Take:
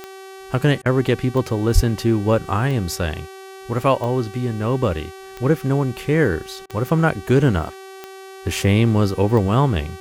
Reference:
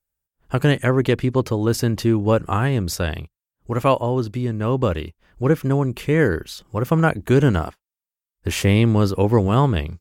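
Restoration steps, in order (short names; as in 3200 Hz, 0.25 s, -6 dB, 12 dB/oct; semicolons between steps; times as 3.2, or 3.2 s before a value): de-click; de-hum 383.6 Hz, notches 35; 1.74–1.86 HPF 140 Hz 24 dB/oct; interpolate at 0.82/6.66, 35 ms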